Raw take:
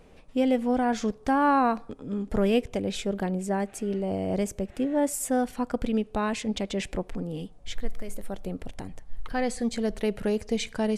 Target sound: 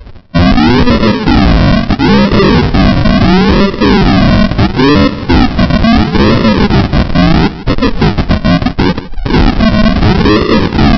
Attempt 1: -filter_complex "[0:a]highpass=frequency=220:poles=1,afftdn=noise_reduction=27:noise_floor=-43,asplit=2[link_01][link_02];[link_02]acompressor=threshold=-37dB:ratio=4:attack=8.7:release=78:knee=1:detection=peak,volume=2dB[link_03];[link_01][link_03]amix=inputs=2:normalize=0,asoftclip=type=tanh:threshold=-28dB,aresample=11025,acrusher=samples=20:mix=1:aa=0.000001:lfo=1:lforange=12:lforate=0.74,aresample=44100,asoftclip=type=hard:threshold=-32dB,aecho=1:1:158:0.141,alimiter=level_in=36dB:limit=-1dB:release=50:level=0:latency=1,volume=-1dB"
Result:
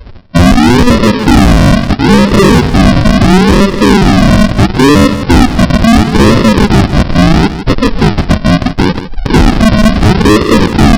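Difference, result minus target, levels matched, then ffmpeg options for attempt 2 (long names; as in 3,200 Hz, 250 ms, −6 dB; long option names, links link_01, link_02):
soft clipping: distortion −5 dB
-filter_complex "[0:a]highpass=frequency=220:poles=1,afftdn=noise_reduction=27:noise_floor=-43,asplit=2[link_01][link_02];[link_02]acompressor=threshold=-37dB:ratio=4:attack=8.7:release=78:knee=1:detection=peak,volume=2dB[link_03];[link_01][link_03]amix=inputs=2:normalize=0,asoftclip=type=tanh:threshold=-38.5dB,aresample=11025,acrusher=samples=20:mix=1:aa=0.000001:lfo=1:lforange=12:lforate=0.74,aresample=44100,asoftclip=type=hard:threshold=-32dB,aecho=1:1:158:0.141,alimiter=level_in=36dB:limit=-1dB:release=50:level=0:latency=1,volume=-1dB"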